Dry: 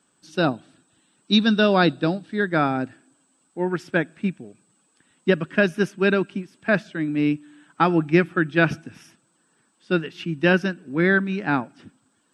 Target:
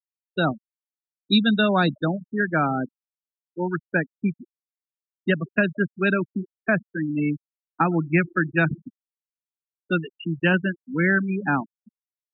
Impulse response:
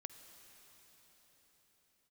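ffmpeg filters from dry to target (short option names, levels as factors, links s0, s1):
-filter_complex "[0:a]asplit=2[s0][s1];[1:a]atrim=start_sample=2205,asetrate=74970,aresample=44100,lowshelf=f=170:g=-6.5[s2];[s1][s2]afir=irnorm=-1:irlink=0,volume=0.891[s3];[s0][s3]amix=inputs=2:normalize=0,afftfilt=real='re*gte(hypot(re,im),0.126)':imag='im*gte(hypot(re,im),0.126)':win_size=1024:overlap=0.75,acrossover=split=240|660[s4][s5][s6];[s5]acompressor=threshold=0.0282:ratio=4[s7];[s6]acompressor=threshold=0.112:ratio=4[s8];[s4][s7][s8]amix=inputs=3:normalize=0"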